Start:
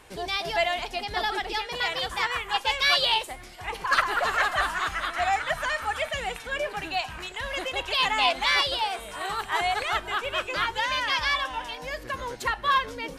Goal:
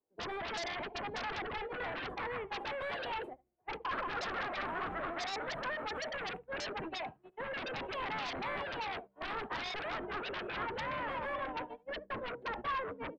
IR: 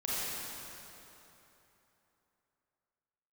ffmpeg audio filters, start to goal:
-filter_complex "[0:a]agate=range=-43dB:threshold=-32dB:ratio=16:detection=peak,acompressor=threshold=-30dB:ratio=2,asplit=2[a][b];[b]aecho=0:1:73:0.0708[c];[a][c]amix=inputs=2:normalize=0,aeval=exprs='clip(val(0),-1,0.0596)':c=same,acrossover=split=190 2400:gain=0.112 1 0.0631[d][e][f];[d][e][f]amix=inputs=3:normalize=0,bandreject=f=65.62:t=h:w=4,bandreject=f=131.24:t=h:w=4,bandreject=f=196.86:t=h:w=4,acrossover=split=650[g][h];[g]aeval=exprs='0.0335*sin(PI/2*7.94*val(0)/0.0335)':c=same[i];[h]equalizer=f=5.7k:t=o:w=0.64:g=-11.5[j];[i][j]amix=inputs=2:normalize=0,volume=-8.5dB"

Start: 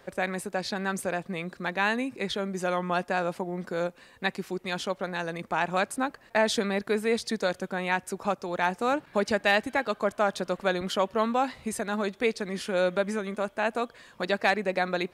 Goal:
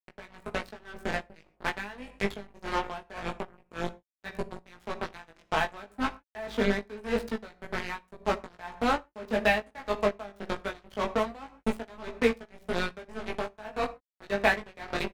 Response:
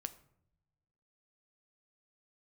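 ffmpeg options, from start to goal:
-filter_complex "[0:a]agate=range=-10dB:threshold=-43dB:ratio=16:detection=peak,aeval=exprs='val(0)+0.00891*(sin(2*PI*50*n/s)+sin(2*PI*2*50*n/s)/2+sin(2*PI*3*50*n/s)/3+sin(2*PI*4*50*n/s)/4+sin(2*PI*5*50*n/s)/5)':c=same,aecho=1:1:4.6:0.55,acrusher=bits=3:mix=0:aa=0.5,acrossover=split=3700[a][b];[b]acompressor=threshold=-43dB:ratio=4:attack=1:release=60[c];[a][c]amix=inputs=2:normalize=0,flanger=delay=17:depth=2.8:speed=0.24,asplit=2[d][e];[1:a]atrim=start_sample=2205,atrim=end_sample=6174[f];[e][f]afir=irnorm=-1:irlink=0,volume=11.5dB[g];[d][g]amix=inputs=2:normalize=0,aeval=exprs='val(0)*pow(10,-21*(0.5-0.5*cos(2*PI*1.8*n/s))/20)':c=same,volume=-7.5dB"

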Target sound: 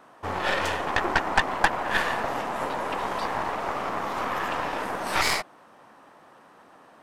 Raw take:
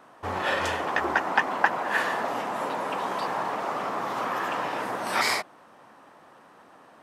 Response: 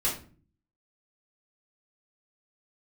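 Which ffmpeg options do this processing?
-af "aeval=exprs='0.668*(cos(1*acos(clip(val(0)/0.668,-1,1)))-cos(1*PI/2))+0.0841*(cos(8*acos(clip(val(0)/0.668,-1,1)))-cos(8*PI/2))':c=same"

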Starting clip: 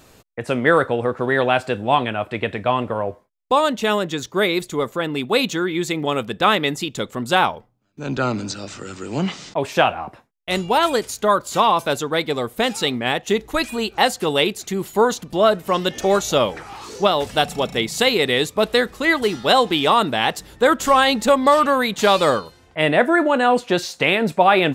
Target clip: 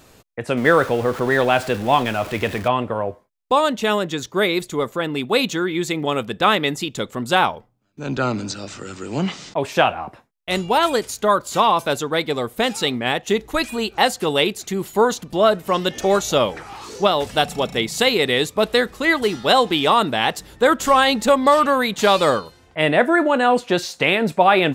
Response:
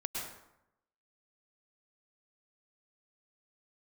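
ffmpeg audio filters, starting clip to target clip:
-filter_complex "[0:a]asettb=1/sr,asplit=3[a][b][c];[a]atrim=end=0.574[d];[b]atrim=start=0.57:end=2.68,asetpts=PTS-STARTPTS,afade=t=in:d=0.004:c=qsin,afade=t=out:st=2.106:d=0.004:c=qsin,aeval=exprs='val(0)+0.5*0.0355*sgn(val(0))':c=same[e];[c]atrim=start=2.676[f];[d][e]acrossfade=d=0.004:c1=hsin:c2=qsin[g];[g][f]acrossfade=d=0.004:c1=qsin:c2=hsin"

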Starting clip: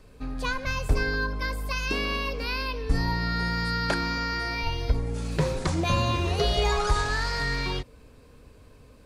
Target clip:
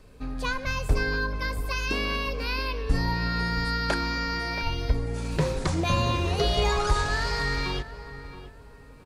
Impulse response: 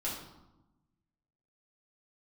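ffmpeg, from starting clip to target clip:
-filter_complex "[0:a]asplit=2[a][b];[b]adelay=674,lowpass=f=1.7k:p=1,volume=-12.5dB,asplit=2[c][d];[d]adelay=674,lowpass=f=1.7k:p=1,volume=0.33,asplit=2[e][f];[f]adelay=674,lowpass=f=1.7k:p=1,volume=0.33[g];[a][c][e][g]amix=inputs=4:normalize=0"

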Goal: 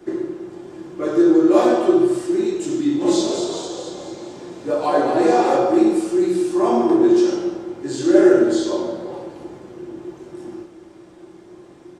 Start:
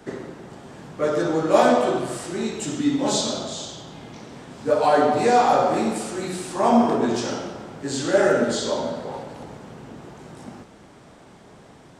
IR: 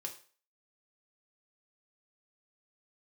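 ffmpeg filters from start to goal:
-filter_complex "[0:a]equalizer=f=340:t=o:w=0.44:g=15,asplit=3[a][b][c];[a]afade=t=out:st=3:d=0.02[d];[b]asplit=8[e][f][g][h][i][j][k][l];[f]adelay=230,afreqshift=55,volume=-5.5dB[m];[g]adelay=460,afreqshift=110,volume=-11dB[n];[h]adelay=690,afreqshift=165,volume=-16.5dB[o];[i]adelay=920,afreqshift=220,volume=-22dB[p];[j]adelay=1150,afreqshift=275,volume=-27.6dB[q];[k]adelay=1380,afreqshift=330,volume=-33.1dB[r];[l]adelay=1610,afreqshift=385,volume=-38.6dB[s];[e][m][n][o][p][q][r][s]amix=inputs=8:normalize=0,afade=t=in:st=3:d=0.02,afade=t=out:st=5.56:d=0.02[t];[c]afade=t=in:st=5.56:d=0.02[u];[d][t][u]amix=inputs=3:normalize=0[v];[1:a]atrim=start_sample=2205[w];[v][w]afir=irnorm=-1:irlink=0,volume=-1dB"

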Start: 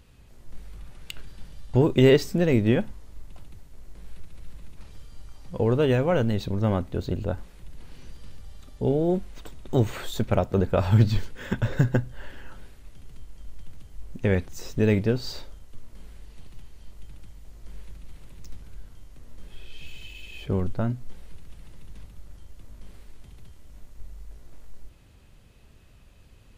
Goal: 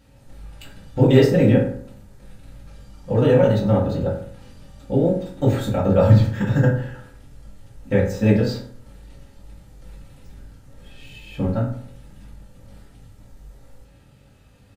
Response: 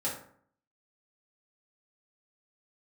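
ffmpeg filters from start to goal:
-filter_complex "[0:a]atempo=1.8[a];[1:a]atrim=start_sample=2205[b];[a][b]afir=irnorm=-1:irlink=0"

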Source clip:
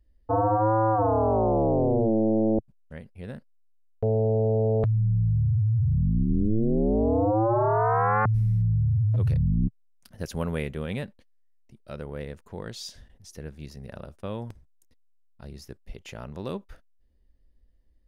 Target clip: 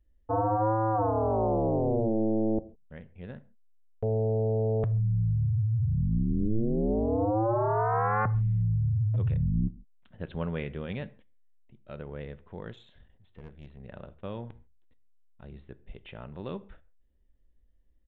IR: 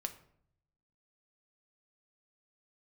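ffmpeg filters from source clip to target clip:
-filter_complex "[0:a]aresample=8000,aresample=44100,asplit=2[a][b];[1:a]atrim=start_sample=2205,afade=t=out:st=0.19:d=0.01,atrim=end_sample=8820,asetrate=37926,aresample=44100[c];[b][c]afir=irnorm=-1:irlink=0,volume=-2.5dB[d];[a][d]amix=inputs=2:normalize=0,asettb=1/sr,asplit=3[e][f][g];[e]atrim=end=12.734[h];[f]atrim=start=12.73:end=13.8,asetpts=PTS-STARTPTS,afade=t=in:d=0.004:c=qsin,afade=t=out:st=1.066:d=0.004:c=qsin,aeval=exprs='(tanh(31.6*val(0)+0.7)-tanh(0.7))/31.6':c=same[i];[g]atrim=start=13.796[j];[h][i]acrossfade=d=0.004:c1=hsin:c2=qsin[k];[k][j]acrossfade=d=0.004:c1=qsin:c2=hsin,volume=-8.5dB"

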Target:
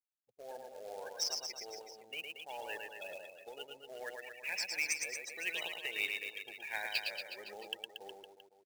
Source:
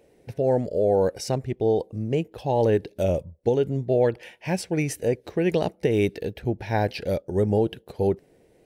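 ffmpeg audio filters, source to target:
-filter_complex "[0:a]lowpass=7.3k,afftfilt=real='re*gte(hypot(re,im),0.0251)':imag='im*gte(hypot(re,im),0.0251)':win_size=1024:overlap=0.75,asuperpass=centerf=5200:order=4:qfactor=0.66,bandreject=f=4.5k:w=28,asplit=2[a][b];[b]aecho=0:1:110|231|364.1|510.5|671.6:0.631|0.398|0.251|0.158|0.1[c];[a][c]amix=inputs=2:normalize=0,acrusher=bits=3:mode=log:mix=0:aa=0.000001,volume=2.5dB"

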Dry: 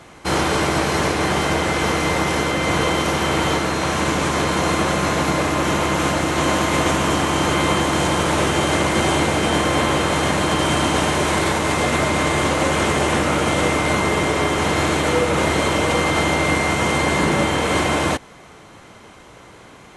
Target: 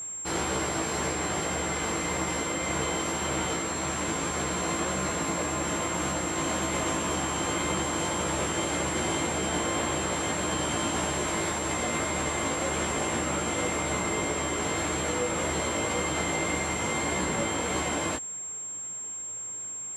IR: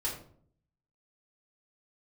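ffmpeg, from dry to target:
-af "flanger=delay=15.5:depth=2.7:speed=1.8,aeval=exprs='val(0)+0.0501*sin(2*PI*7500*n/s)':c=same,volume=-8dB"

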